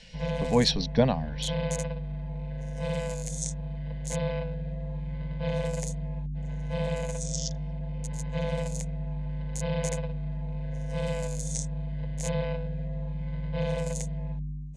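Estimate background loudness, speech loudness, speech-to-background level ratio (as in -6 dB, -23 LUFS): -33.0 LUFS, -26.5 LUFS, 6.5 dB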